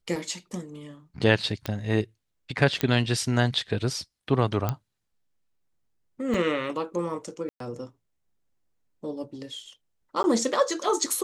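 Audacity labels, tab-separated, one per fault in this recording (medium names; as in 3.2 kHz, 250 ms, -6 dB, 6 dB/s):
1.660000	1.660000	pop -14 dBFS
2.810000	2.810000	pop -10 dBFS
4.690000	4.690000	pop -12 dBFS
6.340000	6.340000	dropout 2.3 ms
7.490000	7.600000	dropout 113 ms
10.230000	10.240000	dropout 10 ms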